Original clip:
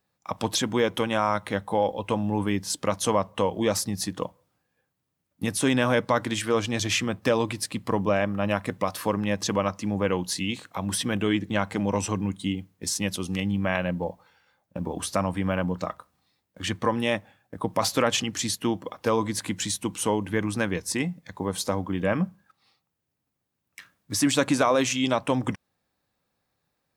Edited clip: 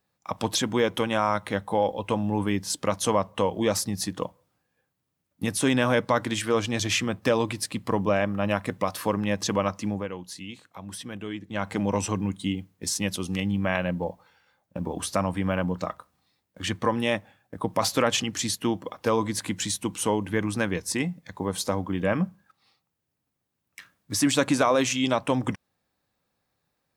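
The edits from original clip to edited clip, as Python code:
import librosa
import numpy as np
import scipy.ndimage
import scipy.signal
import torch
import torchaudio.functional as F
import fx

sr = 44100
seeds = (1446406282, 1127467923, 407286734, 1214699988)

y = fx.edit(x, sr, fx.fade_down_up(start_s=9.87, length_s=1.83, db=-10.5, fade_s=0.21), tone=tone)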